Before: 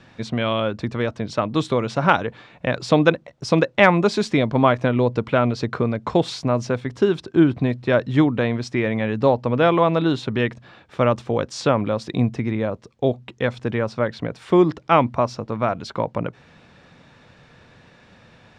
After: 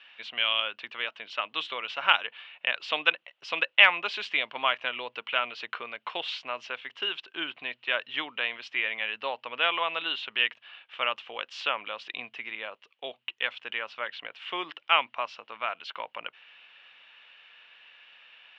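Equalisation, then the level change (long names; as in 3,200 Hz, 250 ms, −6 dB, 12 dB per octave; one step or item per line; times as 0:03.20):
high-pass filter 1,100 Hz 12 dB per octave
low-pass with resonance 2,900 Hz, resonance Q 7.2
−6.0 dB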